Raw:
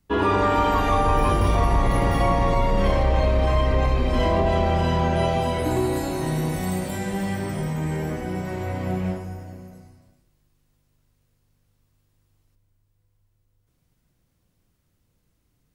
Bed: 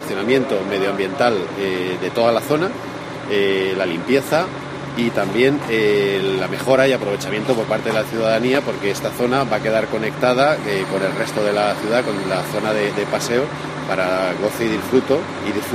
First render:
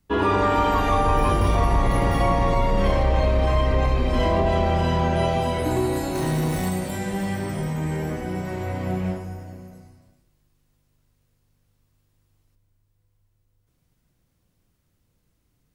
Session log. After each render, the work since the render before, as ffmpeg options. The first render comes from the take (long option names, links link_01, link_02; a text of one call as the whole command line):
ffmpeg -i in.wav -filter_complex "[0:a]asettb=1/sr,asplit=3[link_01][link_02][link_03];[link_01]atrim=end=6.154[link_04];[link_02]atrim=start=6.15:end=6.69,asetpts=PTS-STARTPTS,afade=type=in:duration=0.004:curve=qsin,afade=type=out:start_time=0.536:duration=0.004:curve=qsin,aeval=exprs='val(0)+0.5*0.0282*sgn(val(0))':channel_layout=same[link_05];[link_03]atrim=start=6.686[link_06];[link_04][link_05]acrossfade=duration=0.004:curve1=hsin:curve2=qsin[link_07];[link_07][link_06]acrossfade=duration=0.004:curve1=qsin:curve2=hsin" out.wav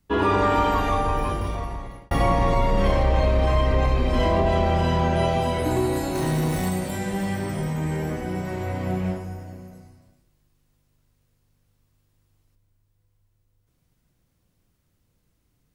ffmpeg -i in.wav -filter_complex "[0:a]asplit=2[link_01][link_02];[link_01]atrim=end=2.11,asetpts=PTS-STARTPTS,afade=type=out:start_time=0.56:duration=1.55[link_03];[link_02]atrim=start=2.11,asetpts=PTS-STARTPTS,afade=type=in:duration=0.004:curve=hsin[link_04];[link_03][link_04]concat=n=2:v=0:a=1" out.wav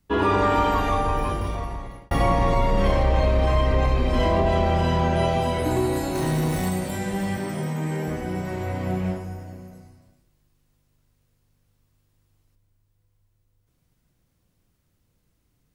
ffmpeg -i in.wav -filter_complex "[0:a]asettb=1/sr,asplit=3[link_01][link_02][link_03];[link_01]atrim=end=7.374[link_04];[link_02]atrim=start=7.37:end=8.08,asetpts=PTS-STARTPTS,afade=type=in:duration=0.004:curve=qsin,afade=type=out:start_time=0.706:duration=0.004:curve=qsin,highpass=frequency=130:width=0.5412,highpass=frequency=130:width=1.3066[link_05];[link_03]atrim=start=8.076[link_06];[link_04][link_05]acrossfade=duration=0.004:curve1=hsin:curve2=qsin[link_07];[link_07][link_06]acrossfade=duration=0.004:curve1=qsin:curve2=hsin" out.wav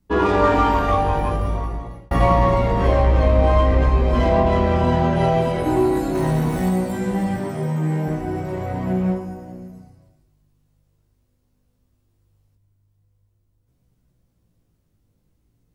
ffmpeg -i in.wav -filter_complex "[0:a]asplit=2[link_01][link_02];[link_02]adynamicsmooth=sensitivity=2:basefreq=1100,volume=2dB[link_03];[link_01][link_03]amix=inputs=2:normalize=0,flanger=delay=16:depth=3.1:speed=0.43" out.wav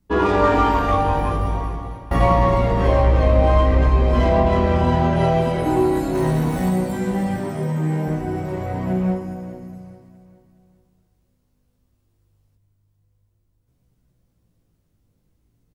ffmpeg -i in.wav -af "aecho=1:1:415|830|1245|1660:0.168|0.0672|0.0269|0.0107" out.wav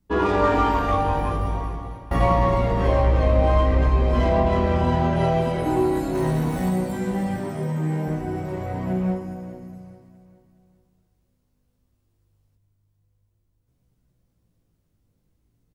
ffmpeg -i in.wav -af "volume=-3dB" out.wav